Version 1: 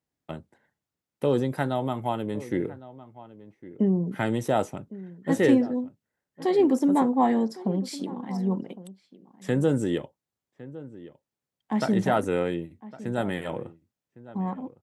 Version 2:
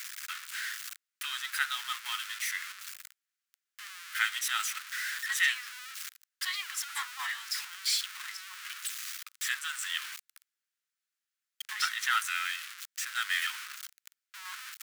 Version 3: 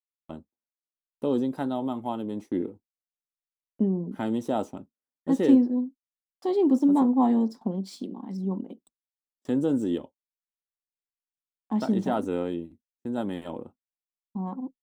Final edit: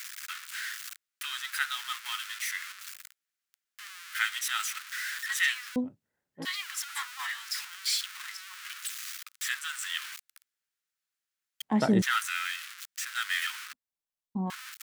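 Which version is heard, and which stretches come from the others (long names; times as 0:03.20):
2
0:05.76–0:06.45: punch in from 1
0:11.62–0:12.02: punch in from 1
0:13.73–0:14.50: punch in from 3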